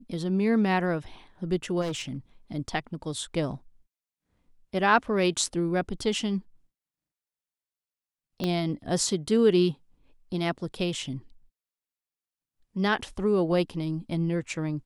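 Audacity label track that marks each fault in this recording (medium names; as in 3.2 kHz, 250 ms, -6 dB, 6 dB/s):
1.810000	2.170000	clipped -27.5 dBFS
8.440000	8.440000	pop -15 dBFS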